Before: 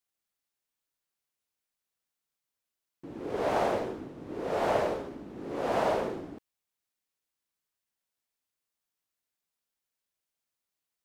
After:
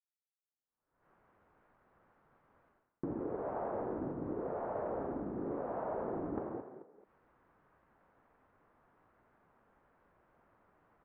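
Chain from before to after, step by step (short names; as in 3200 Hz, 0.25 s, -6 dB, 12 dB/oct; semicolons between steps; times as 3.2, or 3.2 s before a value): recorder AGC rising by 28 dB/s; expander -51 dBFS; LPF 1400 Hz 24 dB/oct; frequency-shifting echo 0.219 s, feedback 32%, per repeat +43 Hz, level -13 dB; reverse; compressor 16:1, threshold -41 dBFS, peak gain reduction 19.5 dB; reverse; gain +6 dB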